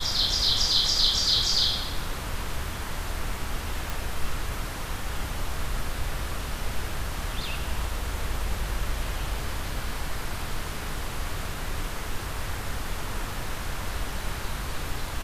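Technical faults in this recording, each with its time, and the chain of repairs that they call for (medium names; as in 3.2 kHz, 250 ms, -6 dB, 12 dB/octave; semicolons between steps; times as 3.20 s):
3.90 s: pop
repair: de-click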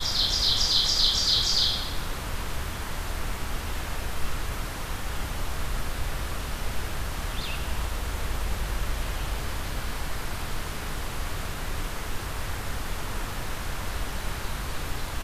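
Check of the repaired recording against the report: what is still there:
nothing left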